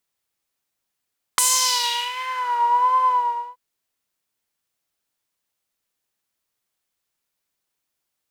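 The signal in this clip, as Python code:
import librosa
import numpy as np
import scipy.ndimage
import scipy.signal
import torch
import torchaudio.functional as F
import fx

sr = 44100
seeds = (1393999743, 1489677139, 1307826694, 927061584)

y = fx.sub_patch_vibrato(sr, seeds[0], note=83, wave='triangle', wave2='saw', interval_st=0, detune_cents=16, level2_db=-9.0, sub_db=-15.0, noise_db=-10, kind='bandpass', cutoff_hz=780.0, q=2.6, env_oct=3.5, env_decay_s=1.28, env_sustain_pct=10, attack_ms=1.5, decay_s=0.73, sustain_db=-17.0, release_s=0.47, note_s=1.71, lfo_hz=1.4, vibrato_cents=68)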